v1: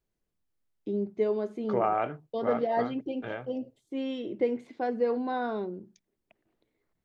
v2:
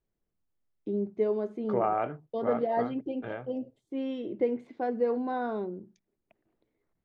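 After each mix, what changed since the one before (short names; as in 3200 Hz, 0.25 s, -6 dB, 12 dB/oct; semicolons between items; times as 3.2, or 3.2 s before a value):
master: add high shelf 2600 Hz -10 dB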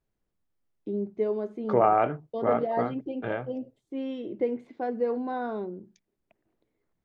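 second voice +6.5 dB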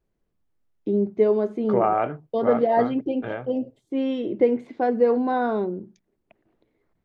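first voice +8.5 dB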